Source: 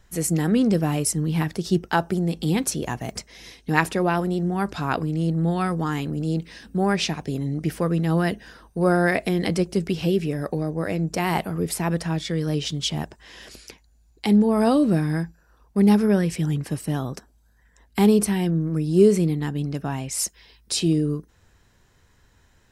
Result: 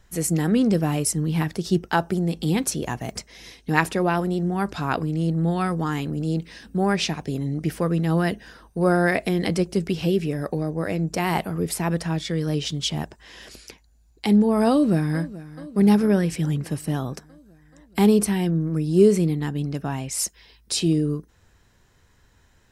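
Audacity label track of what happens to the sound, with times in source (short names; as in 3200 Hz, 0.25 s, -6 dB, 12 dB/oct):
14.710000	15.230000	echo throw 0.43 s, feedback 70%, level -17 dB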